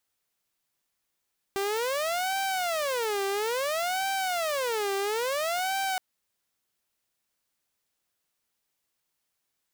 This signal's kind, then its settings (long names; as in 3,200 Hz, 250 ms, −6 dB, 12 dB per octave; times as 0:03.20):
siren wail 393–779 Hz 0.59 per second saw −24 dBFS 4.42 s